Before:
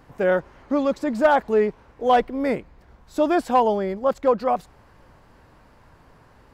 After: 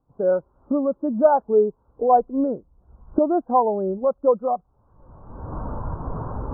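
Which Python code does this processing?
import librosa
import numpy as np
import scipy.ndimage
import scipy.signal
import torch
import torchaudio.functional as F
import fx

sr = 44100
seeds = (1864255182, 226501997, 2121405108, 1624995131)

y = fx.recorder_agc(x, sr, target_db=-14.0, rise_db_per_s=29.0, max_gain_db=30)
y = scipy.signal.sosfilt(scipy.signal.butter(8, 1400.0, 'lowpass', fs=sr, output='sos'), y)
y = fx.spectral_expand(y, sr, expansion=1.5)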